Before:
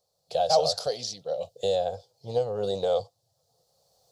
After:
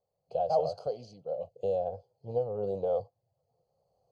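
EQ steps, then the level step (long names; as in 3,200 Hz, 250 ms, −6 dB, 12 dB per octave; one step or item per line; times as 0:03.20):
moving average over 24 samples
−3.0 dB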